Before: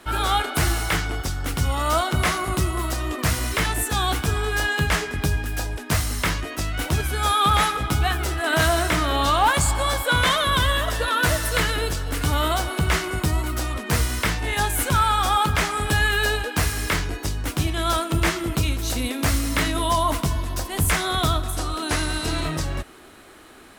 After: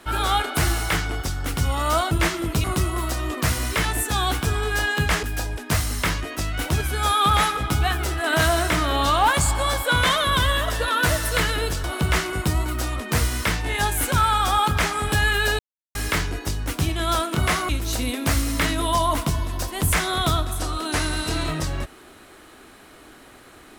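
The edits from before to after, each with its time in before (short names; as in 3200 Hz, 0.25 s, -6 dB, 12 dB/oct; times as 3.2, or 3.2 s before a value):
2.11–2.45 swap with 18.13–18.66
5.04–5.43 cut
12.04–12.62 cut
16.37–16.73 mute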